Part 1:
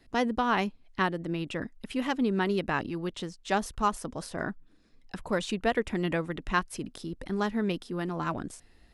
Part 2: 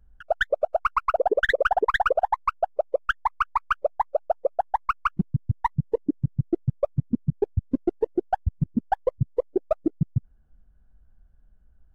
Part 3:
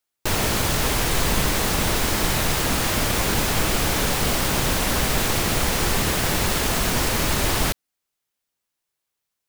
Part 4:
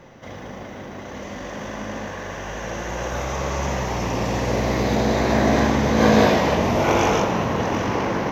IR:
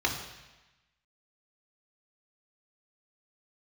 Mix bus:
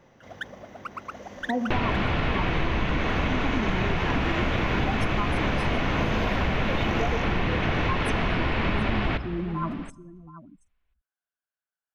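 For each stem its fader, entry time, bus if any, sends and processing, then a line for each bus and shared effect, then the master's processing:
+2.0 dB, 1.35 s, send −18.5 dB, echo send −15 dB, expanding power law on the bin magnitudes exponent 3.4
−7.0 dB, 0.00 s, no send, no echo send, Bessel high-pass filter 1,900 Hz
+3.0 dB, 1.45 s, send −19 dB, echo send −22.5 dB, low-pass filter 2,800 Hz 24 dB per octave
−11.0 dB, 0.00 s, no send, no echo send, no processing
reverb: on, RT60 1.1 s, pre-delay 3 ms
echo: single-tap delay 727 ms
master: downward compressor, threshold −21 dBFS, peak gain reduction 8.5 dB

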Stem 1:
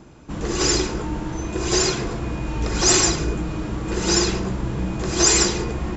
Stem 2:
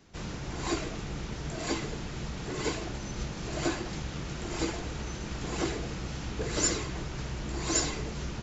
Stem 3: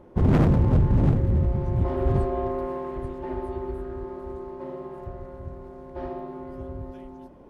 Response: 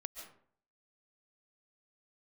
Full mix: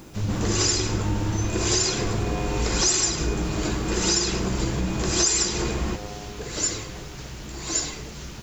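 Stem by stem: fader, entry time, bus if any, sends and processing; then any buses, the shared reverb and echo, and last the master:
−0.5 dB, 0.00 s, no send, no processing
−2.0 dB, 0.00 s, no send, no processing
−1.5 dB, 0.00 s, no send, phases set to zero 103 Hz; gain into a clipping stage and back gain 19.5 dB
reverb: not used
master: high-shelf EQ 3,100 Hz +8 dB; bit reduction 9 bits; downward compressor 6 to 1, threshold −19 dBFS, peak gain reduction 12.5 dB

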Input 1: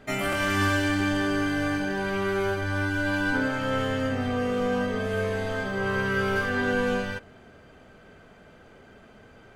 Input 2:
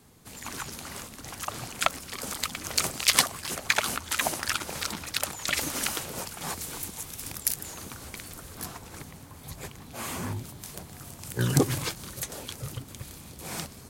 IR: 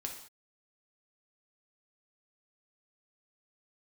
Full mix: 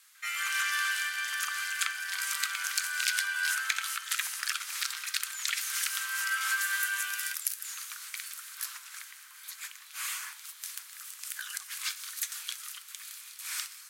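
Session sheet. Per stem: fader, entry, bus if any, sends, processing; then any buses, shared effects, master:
0:03.69 −2 dB → 0:03.93 −11.5 dB → 0:05.65 −11.5 dB → 0:06.33 −1.5 dB, 0.15 s, no send, no processing
−0.5 dB, 0.00 s, send −5 dB, downward compressor 12 to 1, threshold −29 dBFS, peak gain reduction 15.5 dB; harmonic generator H 6 −33 dB, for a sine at −9 dBFS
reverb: on, pre-delay 3 ms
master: Butterworth high-pass 1,300 Hz 36 dB per octave

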